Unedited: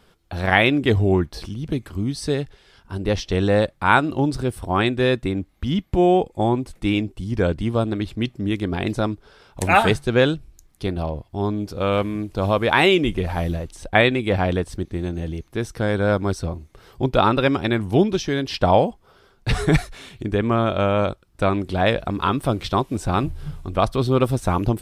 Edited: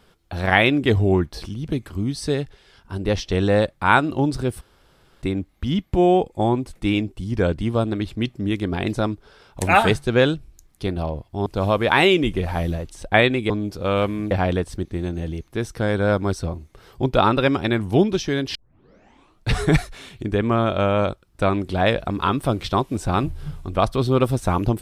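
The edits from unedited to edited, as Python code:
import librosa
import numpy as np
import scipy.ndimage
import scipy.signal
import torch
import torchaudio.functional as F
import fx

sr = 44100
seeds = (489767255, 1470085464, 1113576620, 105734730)

y = fx.edit(x, sr, fx.room_tone_fill(start_s=4.61, length_s=0.61),
    fx.move(start_s=11.46, length_s=0.81, to_s=14.31),
    fx.tape_start(start_s=18.55, length_s=0.95), tone=tone)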